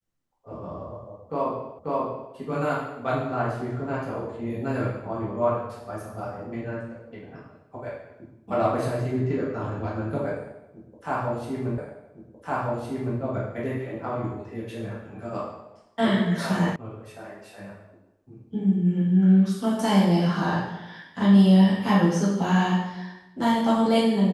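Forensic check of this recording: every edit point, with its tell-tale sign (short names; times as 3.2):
1.79 repeat of the last 0.54 s
11.78 repeat of the last 1.41 s
16.76 sound cut off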